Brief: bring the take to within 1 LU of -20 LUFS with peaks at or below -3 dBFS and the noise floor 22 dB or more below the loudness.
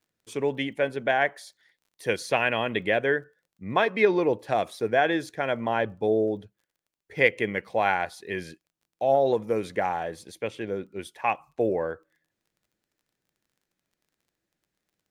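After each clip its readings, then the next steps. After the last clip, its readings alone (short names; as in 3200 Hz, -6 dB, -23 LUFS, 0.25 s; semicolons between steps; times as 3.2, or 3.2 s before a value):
ticks 19/s; loudness -26.5 LUFS; peak -4.5 dBFS; loudness target -20.0 LUFS
-> de-click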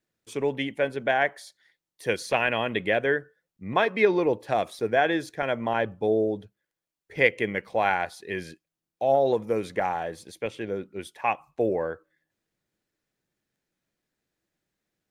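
ticks 0.066/s; loudness -26.5 LUFS; peak -4.5 dBFS; loudness target -20.0 LUFS
-> gain +6.5 dB; limiter -3 dBFS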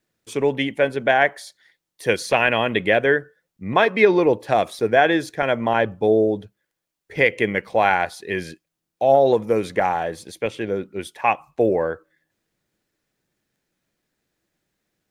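loudness -20.5 LUFS; peak -3.0 dBFS; noise floor -82 dBFS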